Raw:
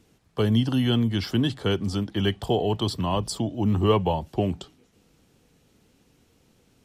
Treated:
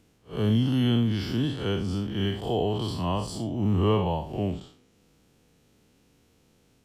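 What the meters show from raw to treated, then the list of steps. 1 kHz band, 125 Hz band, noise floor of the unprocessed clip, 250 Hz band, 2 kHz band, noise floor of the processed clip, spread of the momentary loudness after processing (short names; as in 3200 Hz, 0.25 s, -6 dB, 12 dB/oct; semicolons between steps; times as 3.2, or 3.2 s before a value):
-3.0 dB, -1.0 dB, -64 dBFS, -1.5 dB, -4.0 dB, -64 dBFS, 8 LU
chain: time blur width 0.134 s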